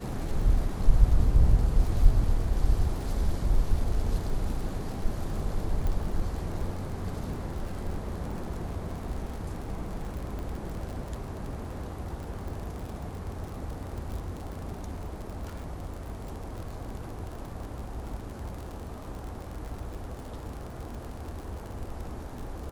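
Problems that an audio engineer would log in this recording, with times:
surface crackle 50 per second −35 dBFS
0:05.87: click −20 dBFS
0:10.39: click −26 dBFS

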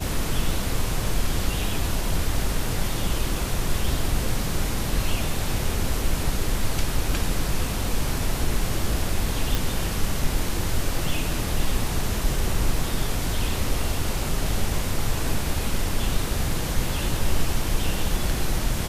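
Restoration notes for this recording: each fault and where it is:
0:09.55: click

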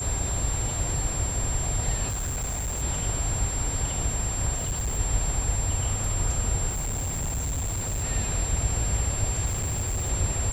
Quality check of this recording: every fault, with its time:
whistle 7,400 Hz −30 dBFS
0:02.08–0:02.83: clipping −26 dBFS
0:04.56–0:04.98: clipping −24 dBFS
0:06.69–0:08.04: clipping −25.5 dBFS
0:09.45–0:10.10: clipping −24 dBFS

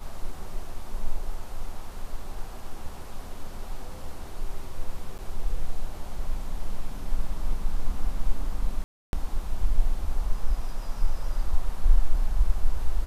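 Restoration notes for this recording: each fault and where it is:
0:05.18–0:05.19: drop-out 7.7 ms
0:08.84–0:09.13: drop-out 291 ms

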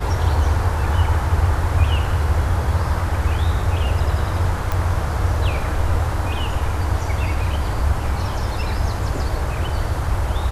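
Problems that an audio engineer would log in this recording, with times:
0:04.72: click

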